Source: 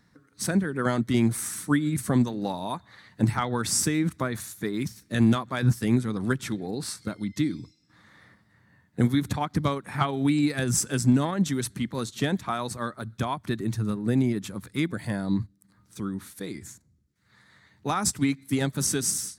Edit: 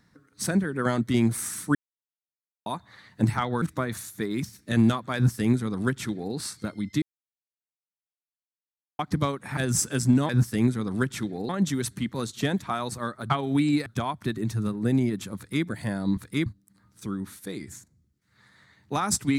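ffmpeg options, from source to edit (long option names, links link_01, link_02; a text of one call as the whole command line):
ffmpeg -i in.wav -filter_complex "[0:a]asplit=13[link_01][link_02][link_03][link_04][link_05][link_06][link_07][link_08][link_09][link_10][link_11][link_12][link_13];[link_01]atrim=end=1.75,asetpts=PTS-STARTPTS,afade=type=out:start_time=1.746:duration=0.004:curve=hsin[link_14];[link_02]atrim=start=1.75:end=2.66,asetpts=PTS-STARTPTS,volume=0[link_15];[link_03]atrim=start=2.66:end=3.622,asetpts=PTS-STARTPTS,afade=type=in:duration=0.004:curve=hsin[link_16];[link_04]atrim=start=4.048:end=7.45,asetpts=PTS-STARTPTS,afade=type=out:start_time=3.398:duration=0.004:curve=hsin[link_17];[link_05]atrim=start=7.45:end=9.42,asetpts=PTS-STARTPTS,volume=0[link_18];[link_06]atrim=start=9.42:end=10.002,asetpts=PTS-STARTPTS,afade=type=in:duration=0.004:curve=hsin[link_19];[link_07]atrim=start=10.558:end=11.282[link_20];[link_08]atrim=start=5.578:end=6.782[link_21];[link_09]atrim=start=11.278:end=13.092[link_22];[link_10]atrim=start=9.998:end=10.562[link_23];[link_11]atrim=start=13.088:end=15.402[link_24];[link_12]atrim=start=14.588:end=14.882[link_25];[link_13]atrim=start=15.398[link_26];[link_14][link_15][link_16]concat=n=3:v=0:a=1[link_27];[link_17][link_18][link_19]concat=n=3:v=0:a=1[link_28];[link_27][link_28]acrossfade=duration=0.004:curve1=hsin:curve2=hsin[link_29];[link_29][link_20]acrossfade=duration=0.004:curve1=hsin:curve2=hsin[link_30];[link_30][link_21]acrossfade=duration=0.004:curve1=hsin:curve2=hsin[link_31];[link_31][link_22]acrossfade=duration=0.004:curve1=hsin:curve2=hsin[link_32];[link_32][link_23]acrossfade=duration=0.004:curve1=hsin:curve2=hsin[link_33];[link_33][link_24]acrossfade=duration=0.004:curve1=hsin:curve2=hsin[link_34];[link_34][link_25]acrossfade=duration=0.004:curve1=hsin:curve2=hsin[link_35];[link_35][link_26]acrossfade=duration=0.004:curve1=hsin:curve2=hsin" out.wav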